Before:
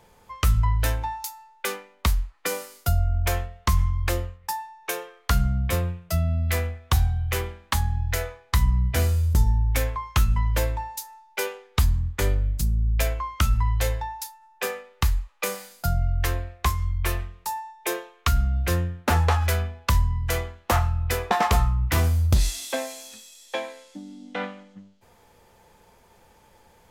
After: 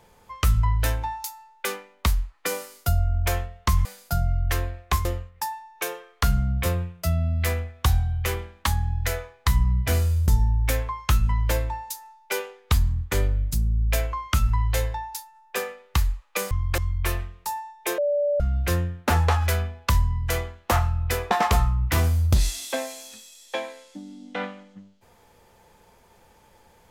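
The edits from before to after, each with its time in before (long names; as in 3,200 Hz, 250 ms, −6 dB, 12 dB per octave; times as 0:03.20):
0:03.85–0:04.12: swap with 0:15.58–0:16.78
0:17.98–0:18.40: beep over 581 Hz −19.5 dBFS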